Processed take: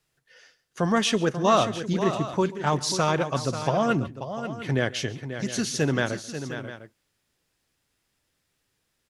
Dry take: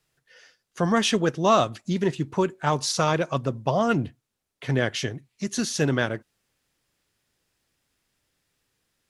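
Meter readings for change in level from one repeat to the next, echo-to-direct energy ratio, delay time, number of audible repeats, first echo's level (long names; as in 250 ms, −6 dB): repeats not evenly spaced, −8.5 dB, 138 ms, 3, −20.0 dB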